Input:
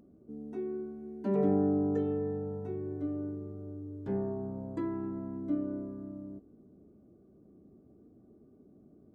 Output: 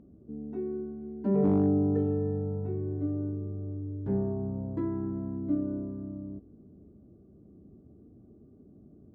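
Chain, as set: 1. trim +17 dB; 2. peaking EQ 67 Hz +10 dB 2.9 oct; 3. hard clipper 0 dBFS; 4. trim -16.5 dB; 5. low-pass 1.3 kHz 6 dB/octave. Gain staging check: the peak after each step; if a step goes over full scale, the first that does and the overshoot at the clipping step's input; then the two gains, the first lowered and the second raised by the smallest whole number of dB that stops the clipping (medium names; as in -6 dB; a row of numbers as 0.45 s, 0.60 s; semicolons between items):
+0.5 dBFS, +4.0 dBFS, 0.0 dBFS, -16.5 dBFS, -16.5 dBFS; step 1, 4.0 dB; step 1 +13 dB, step 4 -12.5 dB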